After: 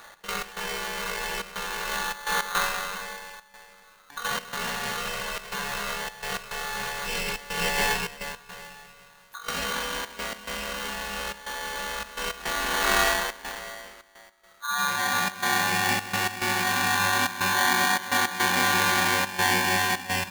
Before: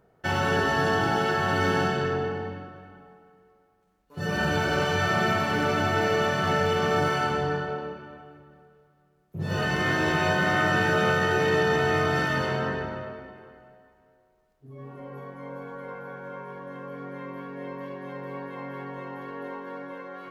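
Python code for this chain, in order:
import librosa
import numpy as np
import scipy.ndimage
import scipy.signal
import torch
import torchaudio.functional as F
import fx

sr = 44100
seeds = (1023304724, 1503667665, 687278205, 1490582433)

y = fx.over_compress(x, sr, threshold_db=-35.0, ratio=-1.0)
y = fx.peak_eq(y, sr, hz=130.0, db=3.0, octaves=0.77)
y = fx.step_gate(y, sr, bpm=106, pattern='x.x.xxxxxx.xxx', floor_db=-12.0, edge_ms=4.5)
y = fx.tilt_shelf(y, sr, db=-6.0, hz=820.0, at=(7.06, 9.64))
y = y * np.sign(np.sin(2.0 * np.pi * 1300.0 * np.arange(len(y)) / sr))
y = F.gain(torch.from_numpy(y), 7.0).numpy()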